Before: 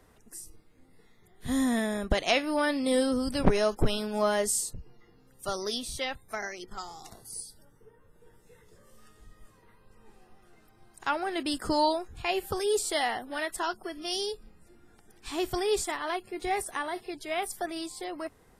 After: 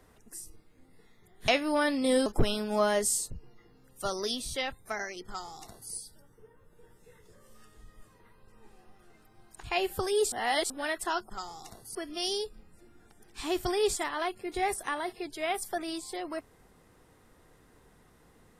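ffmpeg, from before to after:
-filter_complex "[0:a]asplit=8[s0][s1][s2][s3][s4][s5][s6][s7];[s0]atrim=end=1.482[s8];[s1]atrim=start=2.298:end=3.082[s9];[s2]atrim=start=3.688:end=11.062[s10];[s3]atrim=start=12.158:end=12.852[s11];[s4]atrim=start=12.848:end=13.232,asetpts=PTS-STARTPTS,areverse[s12];[s5]atrim=start=13.228:end=13.832[s13];[s6]atrim=start=6.698:end=7.352[s14];[s7]atrim=start=13.828[s15];[s8][s9]acrossfade=d=0.004:c1=hsin:c2=hsin[s16];[s16][s10]acrossfade=d=0.004:c1=hsin:c2=hsin[s17];[s17][s11]acrossfade=d=0.004:c1=hsin:c2=hsin[s18];[s18][s12]acrossfade=d=0.004:c1=hsin:c2=hsin[s19];[s19][s13]acrossfade=d=0.004:c1=hsin:c2=hsin[s20];[s20][s14]acrossfade=d=0.004:c1=hsin:c2=hsin[s21];[s21][s15]acrossfade=d=0.004:c1=hsin:c2=hsin"

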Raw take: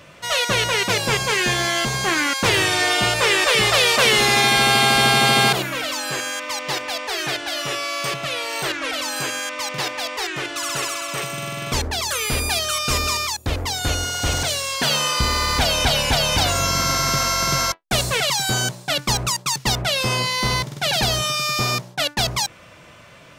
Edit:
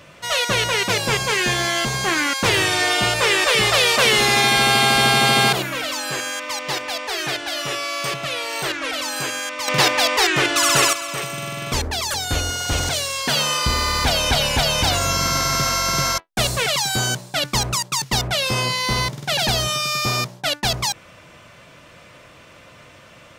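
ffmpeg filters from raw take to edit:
-filter_complex "[0:a]asplit=4[s0][s1][s2][s3];[s0]atrim=end=9.682[s4];[s1]atrim=start=9.678:end=10.932,asetpts=PTS-STARTPTS,volume=2.82[s5];[s2]atrim=start=10.928:end=12.142[s6];[s3]atrim=start=13.678[s7];[s4][s5]acrossfade=d=0.004:c1=hsin:c2=hsin[s8];[s8][s6]acrossfade=d=0.004:c1=hsin:c2=hsin[s9];[s9][s7]acrossfade=d=0.004:c1=hsin:c2=hsin"

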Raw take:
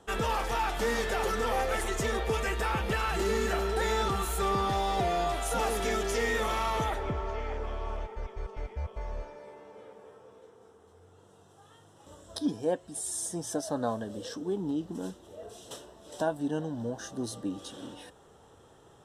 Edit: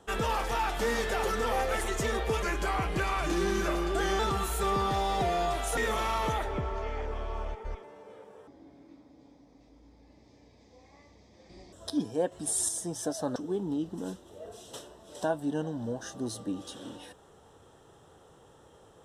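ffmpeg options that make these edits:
-filter_complex "[0:a]asplit=10[s0][s1][s2][s3][s4][s5][s6][s7][s8][s9];[s0]atrim=end=2.424[s10];[s1]atrim=start=2.42:end=3.98,asetpts=PTS-STARTPTS,asetrate=38808,aresample=44100,atrim=end_sample=78177,asetpts=PTS-STARTPTS[s11];[s2]atrim=start=3.976:end=5.562[s12];[s3]atrim=start=6.288:end=8.352[s13];[s4]atrim=start=9.518:end=10.164[s14];[s5]atrim=start=10.16:end=12.21,asetpts=PTS-STARTPTS,asetrate=27783,aresample=44100[s15];[s6]atrim=start=12.206:end=12.802[s16];[s7]atrim=start=12.798:end=13.172,asetpts=PTS-STARTPTS,volume=2[s17];[s8]atrim=start=13.168:end=13.842[s18];[s9]atrim=start=14.328[s19];[s10][s11]acrossfade=d=0.004:c1=hsin:c2=hsin[s20];[s20][s12]acrossfade=d=0.004:c1=hsin:c2=hsin[s21];[s21][s13]acrossfade=d=0.004:c1=hsin:c2=hsin[s22];[s22][s14]acrossfade=d=0.004:c1=hsin:c2=hsin[s23];[s23][s15]acrossfade=d=0.004:c1=hsin:c2=hsin[s24];[s24][s16]acrossfade=d=0.004:c1=hsin:c2=hsin[s25];[s25][s17]acrossfade=d=0.004:c1=hsin:c2=hsin[s26];[s26][s18]acrossfade=d=0.004:c1=hsin:c2=hsin[s27];[s27][s19]acrossfade=d=0.004:c1=hsin:c2=hsin"

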